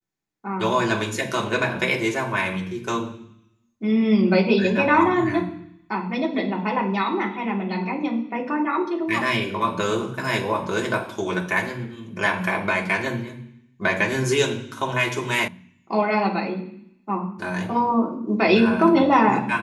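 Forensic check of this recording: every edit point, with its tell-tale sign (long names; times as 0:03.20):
0:15.48: cut off before it has died away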